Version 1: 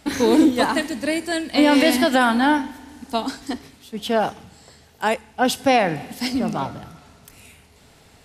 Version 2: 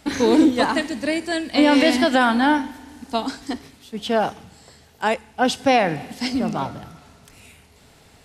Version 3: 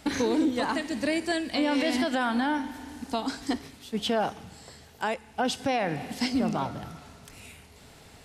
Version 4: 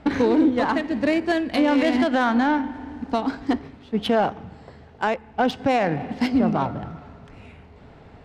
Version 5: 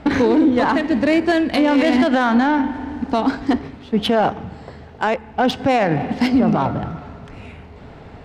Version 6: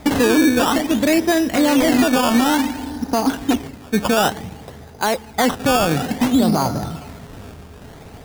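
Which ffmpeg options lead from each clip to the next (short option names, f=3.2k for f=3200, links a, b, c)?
-filter_complex "[0:a]acrossover=split=8800[a][b];[b]acompressor=threshold=-55dB:ratio=4:attack=1:release=60[c];[a][c]amix=inputs=2:normalize=0"
-af "alimiter=limit=-17dB:level=0:latency=1:release=290"
-af "adynamicsmooth=sensitivity=1.5:basefreq=1.7k,volume=7dB"
-af "alimiter=limit=-15.5dB:level=0:latency=1:release=38,volume=7.5dB"
-af "acrusher=samples=15:mix=1:aa=0.000001:lfo=1:lforange=15:lforate=0.56"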